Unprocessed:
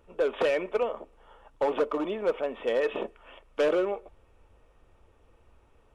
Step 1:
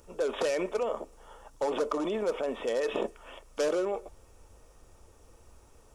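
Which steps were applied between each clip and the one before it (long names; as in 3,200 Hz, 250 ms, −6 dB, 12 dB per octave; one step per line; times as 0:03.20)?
high shelf with overshoot 4,100 Hz +12 dB, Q 1.5
in parallel at −3 dB: compressor whose output falls as the input rises −33 dBFS, ratio −0.5
on the sum: level −4 dB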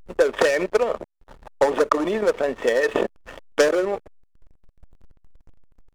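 parametric band 1,800 Hz +9.5 dB 0.48 octaves
transient designer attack +6 dB, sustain −6 dB
slack as between gear wheels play −39 dBFS
level +7.5 dB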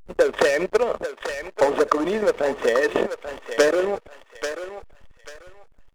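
feedback echo with a high-pass in the loop 839 ms, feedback 30%, high-pass 710 Hz, level −7 dB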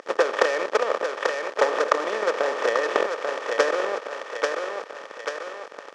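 compressor on every frequency bin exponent 0.4
transient designer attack +7 dB, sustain +3 dB
band-pass filter 490–6,000 Hz
level −8.5 dB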